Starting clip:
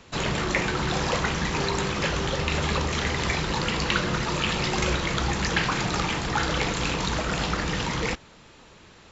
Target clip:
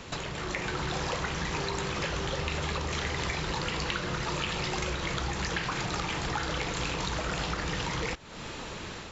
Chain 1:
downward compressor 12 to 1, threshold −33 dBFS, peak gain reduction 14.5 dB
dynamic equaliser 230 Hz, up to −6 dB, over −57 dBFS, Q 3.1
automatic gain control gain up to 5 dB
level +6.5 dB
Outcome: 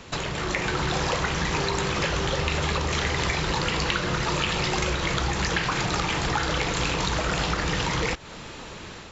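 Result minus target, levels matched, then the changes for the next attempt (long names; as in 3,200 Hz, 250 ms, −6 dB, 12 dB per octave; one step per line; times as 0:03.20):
downward compressor: peak gain reduction −6.5 dB
change: downward compressor 12 to 1, threshold −40 dBFS, peak gain reduction 21 dB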